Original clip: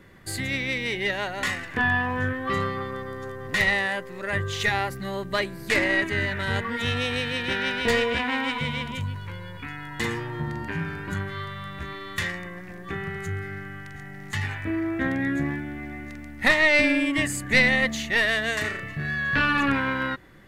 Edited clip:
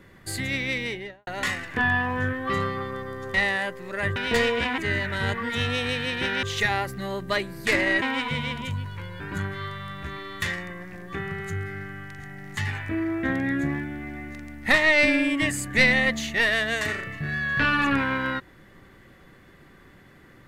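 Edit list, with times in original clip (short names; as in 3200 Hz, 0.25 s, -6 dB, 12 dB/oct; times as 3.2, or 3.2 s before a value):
0.77–1.27 studio fade out
3.34–3.64 cut
4.46–6.05 swap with 7.7–8.32
9.5–10.96 cut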